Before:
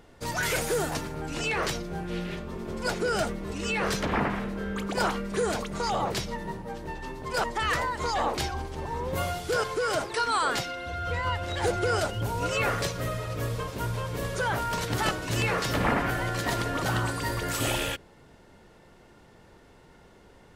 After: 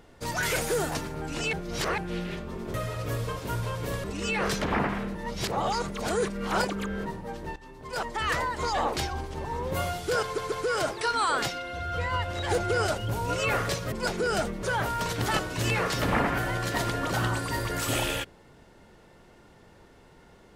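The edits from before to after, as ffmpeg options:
-filter_complex "[0:a]asplit=12[a][b][c][d][e][f][g][h][i][j][k][l];[a]atrim=end=1.532[m];[b]atrim=start=1.528:end=1.982,asetpts=PTS-STARTPTS,areverse[n];[c]atrim=start=1.978:end=2.742[o];[d]atrim=start=13.048:end=14.352[p];[e]atrim=start=3.448:end=4.562[q];[f]atrim=start=4.558:end=6.472,asetpts=PTS-STARTPTS,areverse[r];[g]atrim=start=6.468:end=6.97,asetpts=PTS-STARTPTS,afade=t=out:st=0.498:d=0.004:c=hsin:silence=0.211349[s];[h]atrim=start=6.97:end=9.792,asetpts=PTS-STARTPTS,afade=t=in:d=0.83:silence=0.211349[t];[i]atrim=start=9.648:end=9.792[u];[j]atrim=start=9.648:end=13.052[v];[k]atrim=start=2.738:end=3.452[w];[l]atrim=start=14.348[x];[m][n]acrossfade=d=0.004:c1=hsin:c2=hsin[y];[y][o]acrossfade=d=0.004:c1=hsin:c2=hsin[z];[z][p]acrossfade=d=0.004:c1=hsin:c2=hsin[aa];[aa][q]acrossfade=d=0.004:c1=hsin:c2=hsin[ab];[ab][r]acrossfade=d=0.004:c1=hsin:c2=hsin[ac];[s][t]concat=n=2:v=0:a=1[ad];[ac][ad]acrossfade=d=0.004:c1=hsin:c2=hsin[ae];[ae][u]acrossfade=d=0.004:c1=hsin:c2=hsin[af];[af][v]acrossfade=d=0.004:c1=hsin:c2=hsin[ag];[ag][w]acrossfade=d=0.004:c1=hsin:c2=hsin[ah];[ah][x]acrossfade=d=0.004:c1=hsin:c2=hsin"

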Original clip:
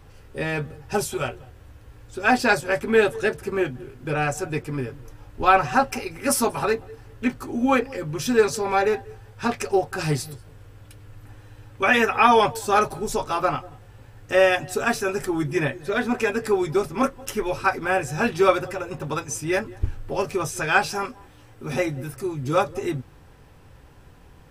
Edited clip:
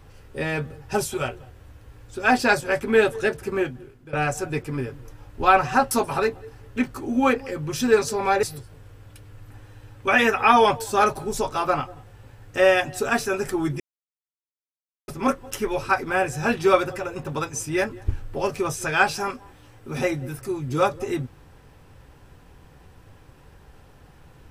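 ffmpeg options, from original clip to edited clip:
-filter_complex "[0:a]asplit=6[a][b][c][d][e][f];[a]atrim=end=4.13,asetpts=PTS-STARTPTS,afade=t=out:st=3.56:d=0.57:silence=0.125893[g];[b]atrim=start=4.13:end=5.912,asetpts=PTS-STARTPTS,afade=t=in:d=0.004:c=hsin:silence=0.125893[h];[c]atrim=start=6.368:end=8.892[i];[d]atrim=start=10.178:end=15.55,asetpts=PTS-STARTPTS,afade=t=out:st=5.368:d=0.004:c=hsin[j];[e]atrim=start=15.55:end=16.83,asetpts=PTS-STARTPTS,volume=0[k];[f]atrim=start=16.83,asetpts=PTS-STARTPTS,afade=t=in:d=0.004:c=hsin[l];[g][h]concat=n=2:v=0:a=1[m];[m][i]acrossfade=d=0.004:c1=hsin:c2=hsin[n];[j][k][l]concat=n=3:v=0:a=1[o];[n][o]acrossfade=d=0.004:c1=hsin:c2=hsin"

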